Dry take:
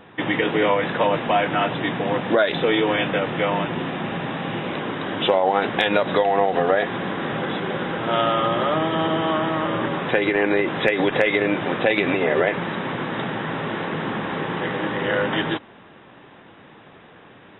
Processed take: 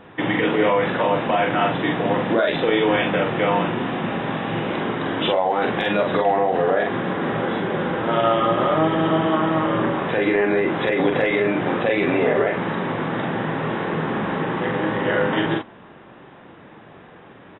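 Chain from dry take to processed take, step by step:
high-shelf EQ 3,400 Hz −7 dB, from 0:06.17 −12 dB
brickwall limiter −12.5 dBFS, peak gain reduction 7 dB
double-tracking delay 44 ms −3.5 dB
level +1.5 dB

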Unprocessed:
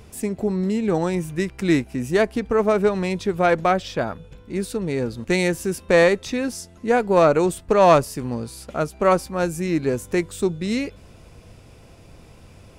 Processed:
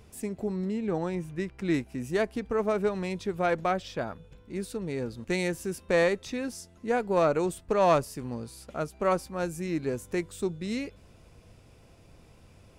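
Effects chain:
0:00.65–0:01.74: high-shelf EQ 5,600 Hz −10.5 dB
level −8.5 dB

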